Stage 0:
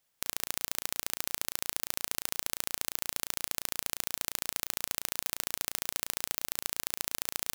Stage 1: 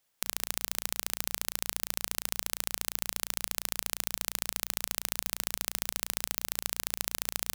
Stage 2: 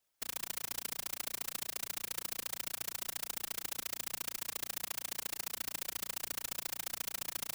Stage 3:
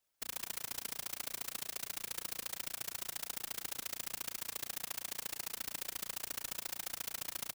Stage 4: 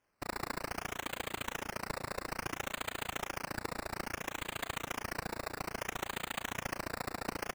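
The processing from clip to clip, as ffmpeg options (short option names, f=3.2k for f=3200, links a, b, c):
-af "bandreject=f=60:t=h:w=6,bandreject=f=120:t=h:w=6,bandreject=f=180:t=h:w=6,volume=1dB"
-af "afftfilt=real='hypot(re,im)*cos(2*PI*random(0))':imag='hypot(re,im)*sin(2*PI*random(1))':win_size=512:overlap=0.75"
-filter_complex "[0:a]asplit=2[a][b];[b]adelay=116.6,volume=-17dB,highshelf=f=4k:g=-2.62[c];[a][c]amix=inputs=2:normalize=0,volume=-1.5dB"
-af "acrusher=samples=11:mix=1:aa=0.000001:lfo=1:lforange=6.6:lforate=0.6,volume=2.5dB"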